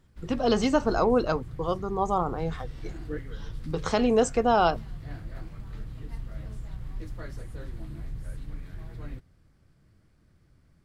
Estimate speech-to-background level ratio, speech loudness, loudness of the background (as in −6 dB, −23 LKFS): 15.5 dB, −26.0 LKFS, −41.5 LKFS